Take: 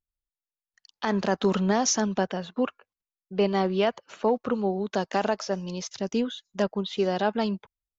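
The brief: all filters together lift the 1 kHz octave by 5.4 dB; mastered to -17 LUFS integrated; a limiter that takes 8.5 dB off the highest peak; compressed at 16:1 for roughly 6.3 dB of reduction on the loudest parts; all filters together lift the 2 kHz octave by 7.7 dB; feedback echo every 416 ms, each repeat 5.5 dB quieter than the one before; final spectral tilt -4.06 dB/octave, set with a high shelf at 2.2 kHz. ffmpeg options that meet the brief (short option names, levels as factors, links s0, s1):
-af "equalizer=f=1000:t=o:g=5.5,equalizer=f=2000:t=o:g=6,highshelf=f=2200:g=3.5,acompressor=threshold=0.0794:ratio=16,alimiter=limit=0.112:level=0:latency=1,aecho=1:1:416|832|1248|1664|2080|2496|2912:0.531|0.281|0.149|0.079|0.0419|0.0222|0.0118,volume=4.22"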